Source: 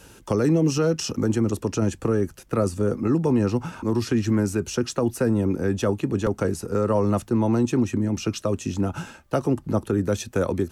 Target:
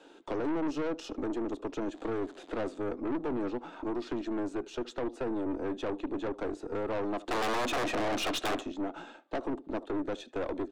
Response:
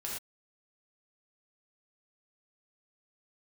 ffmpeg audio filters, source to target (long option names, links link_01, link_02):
-filter_complex "[0:a]asettb=1/sr,asplit=3[link_01][link_02][link_03];[link_01]atrim=end=1.944[link_04];[link_02]atrim=start=1.94:end=2.78,asetpts=PTS-STARTPTS,afade=type=in:duration=0.004:curve=qsin,afade=type=out:start_time=0.836:duration=0.004:curve=qsin,aeval=exprs='val(0)+0.5*0.0178*sgn(val(0))':channel_layout=same[link_05];[link_03]atrim=start=2.776[link_06];[link_04][link_05]acrossfade=duration=0.004:curve1=hsin:curve2=qsin[link_07];[link_07][link_06]acrossfade=duration=0.004:curve1=qsin:curve2=hsin,highshelf=frequency=2200:gain=-11,asplit=2[link_08][link_09];[link_09]acompressor=threshold=-32dB:ratio=6,volume=-2.5dB[link_10];[link_08][link_10]amix=inputs=2:normalize=0,asplit=3[link_11][link_12][link_13];[link_11]afade=type=out:start_time=7.27:duration=0.02[link_14];[link_12]aeval=exprs='0.299*sin(PI/2*5.01*val(0)/0.299)':channel_layout=same,afade=type=in:start_time=7.27:duration=0.02,afade=type=out:start_time=8.59:duration=0.02[link_15];[link_13]afade=type=in:start_time=8.59:duration=0.02[link_16];[link_14][link_15][link_16]amix=inputs=3:normalize=0,highpass=frequency=290:width=0.5412,highpass=frequency=290:width=1.3066,equalizer=frequency=300:width_type=q:width=4:gain=8,equalizer=frequency=710:width_type=q:width=4:gain=7,equalizer=frequency=3600:width_type=q:width=4:gain=10,equalizer=frequency=5700:width_type=q:width=4:gain=-7,lowpass=frequency=7400:width=0.5412,lowpass=frequency=7400:width=1.3066,asplit=2[link_17][link_18];[link_18]adelay=74,lowpass=frequency=3200:poles=1,volume=-21dB,asplit=2[link_19][link_20];[link_20]adelay=74,lowpass=frequency=3200:poles=1,volume=0.27[link_21];[link_19][link_21]amix=inputs=2:normalize=0[link_22];[link_17][link_22]amix=inputs=2:normalize=0,aeval=exprs='(tanh(12.6*val(0)+0.5)-tanh(0.5))/12.6':channel_layout=same,volume=-7dB"